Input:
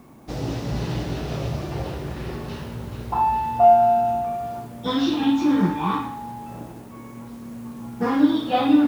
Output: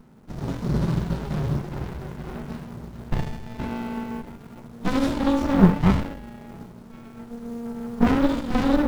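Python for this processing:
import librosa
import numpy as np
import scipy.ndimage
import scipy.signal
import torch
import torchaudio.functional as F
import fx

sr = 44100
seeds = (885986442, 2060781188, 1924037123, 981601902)

y = fx.fixed_phaser(x, sr, hz=470.0, stages=8)
y = fx.noise_reduce_blind(y, sr, reduce_db=8)
y = fx.running_max(y, sr, window=65)
y = y * 10.0 ** (9.0 / 20.0)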